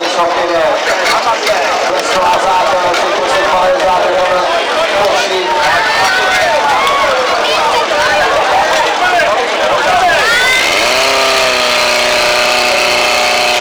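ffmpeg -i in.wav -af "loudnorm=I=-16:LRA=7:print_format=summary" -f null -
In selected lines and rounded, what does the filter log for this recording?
Input Integrated:     -9.6 LUFS
Input True Peak:      -5.1 dBTP
Input LRA:             1.7 LU
Input Threshold:     -19.6 LUFS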